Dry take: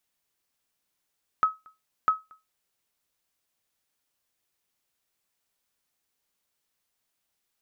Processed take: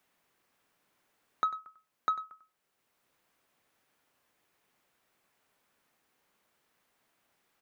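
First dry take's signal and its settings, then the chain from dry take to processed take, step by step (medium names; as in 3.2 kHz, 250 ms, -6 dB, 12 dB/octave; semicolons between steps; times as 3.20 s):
sonar ping 1.28 kHz, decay 0.21 s, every 0.65 s, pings 2, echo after 0.23 s, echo -29.5 dB -13.5 dBFS
saturation -20.5 dBFS; delay 96 ms -13.5 dB; three bands compressed up and down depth 40%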